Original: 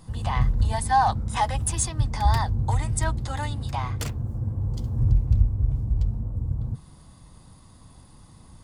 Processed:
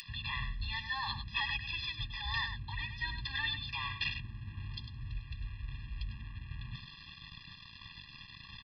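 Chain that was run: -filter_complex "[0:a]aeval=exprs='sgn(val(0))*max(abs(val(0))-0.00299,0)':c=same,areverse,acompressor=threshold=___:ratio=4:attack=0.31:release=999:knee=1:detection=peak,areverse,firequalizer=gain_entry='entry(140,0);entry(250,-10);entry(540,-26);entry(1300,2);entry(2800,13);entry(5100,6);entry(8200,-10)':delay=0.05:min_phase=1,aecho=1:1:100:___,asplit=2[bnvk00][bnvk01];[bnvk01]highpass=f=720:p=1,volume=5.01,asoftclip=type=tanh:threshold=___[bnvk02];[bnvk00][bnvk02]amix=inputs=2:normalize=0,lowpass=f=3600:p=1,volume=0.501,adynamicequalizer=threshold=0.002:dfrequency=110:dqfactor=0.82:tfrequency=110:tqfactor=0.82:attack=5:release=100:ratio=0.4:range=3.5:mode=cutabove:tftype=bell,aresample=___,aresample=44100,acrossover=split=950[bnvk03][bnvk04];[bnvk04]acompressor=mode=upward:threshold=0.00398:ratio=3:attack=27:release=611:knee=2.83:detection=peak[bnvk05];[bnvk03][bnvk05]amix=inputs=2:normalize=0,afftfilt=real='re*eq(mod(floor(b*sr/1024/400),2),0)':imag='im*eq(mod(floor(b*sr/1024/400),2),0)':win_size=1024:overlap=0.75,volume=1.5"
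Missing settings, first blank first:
0.0224, 0.335, 0.0891, 11025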